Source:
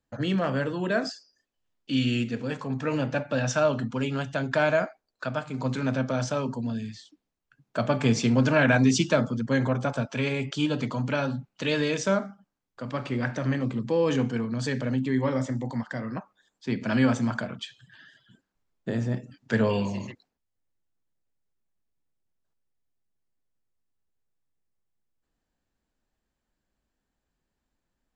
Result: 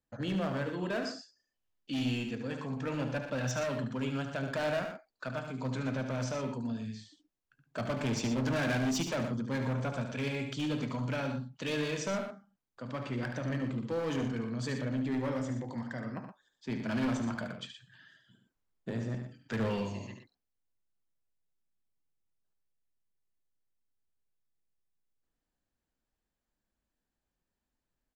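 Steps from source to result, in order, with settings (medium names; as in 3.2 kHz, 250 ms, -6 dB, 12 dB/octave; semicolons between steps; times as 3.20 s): overload inside the chain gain 22.5 dB; loudspeakers at several distances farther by 25 m -8 dB, 41 m -10 dB; trim -7 dB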